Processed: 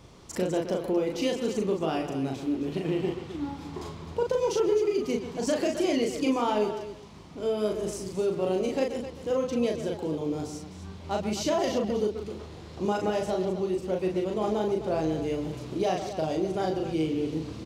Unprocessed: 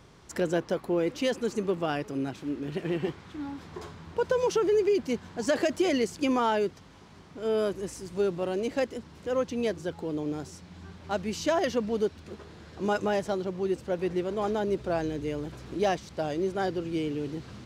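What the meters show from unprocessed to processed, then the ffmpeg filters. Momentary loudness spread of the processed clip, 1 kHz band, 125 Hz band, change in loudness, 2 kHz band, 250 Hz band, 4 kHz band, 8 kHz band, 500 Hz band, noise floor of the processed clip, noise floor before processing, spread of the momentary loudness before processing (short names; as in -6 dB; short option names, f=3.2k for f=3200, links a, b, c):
9 LU, 0.0 dB, +2.0 dB, +1.0 dB, -3.5 dB, +2.0 dB, +1.0 dB, +2.0 dB, +1.0 dB, -44 dBFS, -51 dBFS, 13 LU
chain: -filter_complex "[0:a]equalizer=f=1.6k:t=o:w=0.6:g=-8,asplit=2[a][b];[b]adelay=130,highpass=300,lowpass=3.4k,asoftclip=type=hard:threshold=-23dB,volume=-11dB[c];[a][c]amix=inputs=2:normalize=0,acompressor=threshold=-29dB:ratio=2,asplit=2[d][e];[e]aecho=0:1:37.9|259.5:0.708|0.282[f];[d][f]amix=inputs=2:normalize=0,volume=2dB"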